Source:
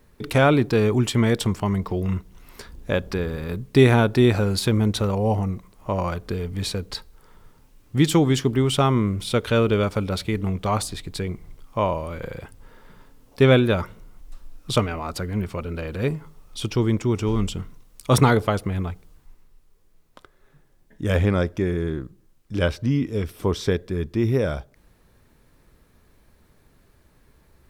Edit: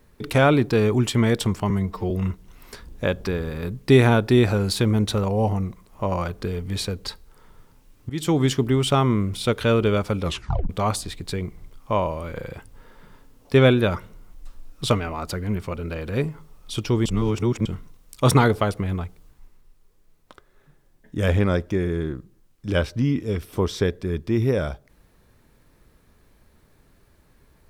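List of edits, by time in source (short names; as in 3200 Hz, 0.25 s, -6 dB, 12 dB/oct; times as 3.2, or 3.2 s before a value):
1.7–1.97 stretch 1.5×
7.96–8.29 fade in, from -20 dB
10.09 tape stop 0.47 s
16.92–17.52 reverse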